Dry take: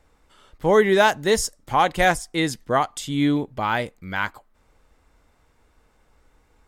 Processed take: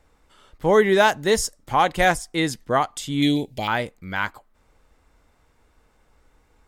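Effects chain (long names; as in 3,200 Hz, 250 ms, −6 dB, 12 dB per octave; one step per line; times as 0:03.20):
0:03.22–0:03.68: drawn EQ curve 760 Hz 0 dB, 1,200 Hz −20 dB, 2,300 Hz +5 dB, 4,000 Hz +11 dB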